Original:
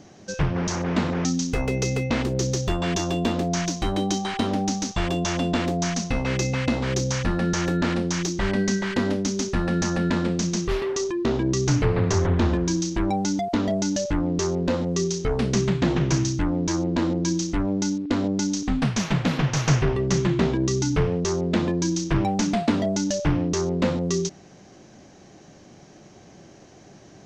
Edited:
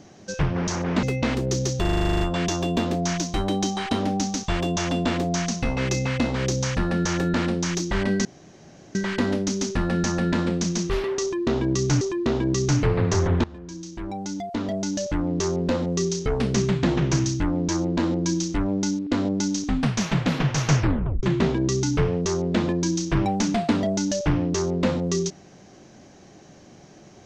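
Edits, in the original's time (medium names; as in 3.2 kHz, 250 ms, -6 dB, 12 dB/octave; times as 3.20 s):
1.03–1.91 s: delete
2.69 s: stutter 0.04 s, 11 plays
8.73 s: insert room tone 0.70 s
11.00–11.79 s: loop, 2 plays
12.43–14.47 s: fade in, from -22 dB
19.77 s: tape stop 0.45 s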